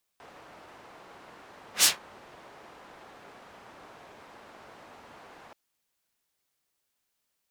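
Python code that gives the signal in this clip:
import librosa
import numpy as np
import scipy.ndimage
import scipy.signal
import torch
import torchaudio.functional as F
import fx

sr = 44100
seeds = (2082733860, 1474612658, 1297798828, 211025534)

y = fx.whoosh(sr, seeds[0], length_s=5.33, peak_s=1.64, rise_s=0.11, fall_s=0.16, ends_hz=860.0, peak_hz=7700.0, q=0.81, swell_db=33.5)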